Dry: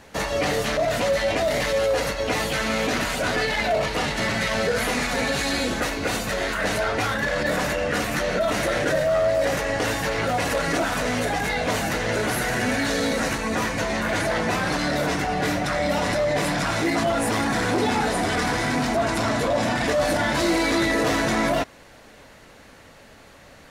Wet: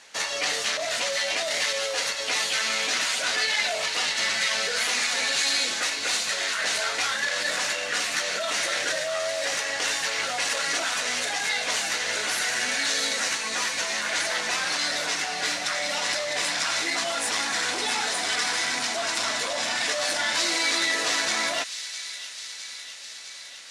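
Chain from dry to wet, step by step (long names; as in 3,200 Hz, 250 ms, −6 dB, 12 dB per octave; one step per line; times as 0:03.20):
running median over 3 samples
meter weighting curve ITU-R 468
on a send: delay with a high-pass on its return 658 ms, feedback 70%, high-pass 2,900 Hz, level −9 dB
on the sum: level −5.5 dB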